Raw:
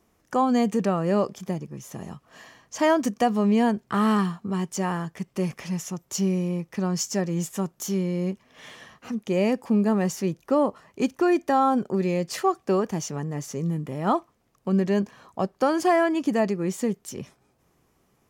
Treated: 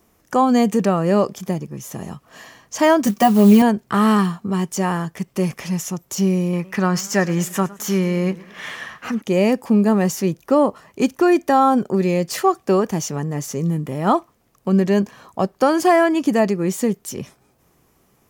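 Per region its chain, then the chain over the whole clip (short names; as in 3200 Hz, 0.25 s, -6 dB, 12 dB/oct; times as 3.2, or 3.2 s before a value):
3.06–3.62 companded quantiser 6-bit + comb 5.2 ms, depth 80%
6.53–9.22 bell 1600 Hz +10 dB 1.7 oct + warbling echo 0.105 s, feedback 48%, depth 153 cents, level -20.5 dB
whole clip: de-esser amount 60%; high shelf 12000 Hz +10 dB; gain +6 dB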